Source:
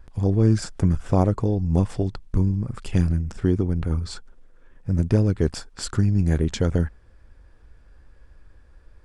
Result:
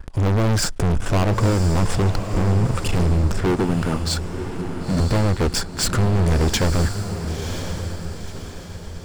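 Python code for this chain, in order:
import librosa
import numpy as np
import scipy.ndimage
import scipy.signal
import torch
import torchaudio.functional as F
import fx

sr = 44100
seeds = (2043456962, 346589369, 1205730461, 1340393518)

p1 = fx.highpass(x, sr, hz=200.0, slope=12, at=(3.46, 5.0))
p2 = fx.leveller(p1, sr, passes=2)
p3 = np.clip(10.0 ** (22.5 / 20.0) * p2, -1.0, 1.0) / 10.0 ** (22.5 / 20.0)
p4 = p3 + fx.echo_diffused(p3, sr, ms=1000, feedback_pct=45, wet_db=-8.0, dry=0)
y = p4 * 10.0 ** (6.0 / 20.0)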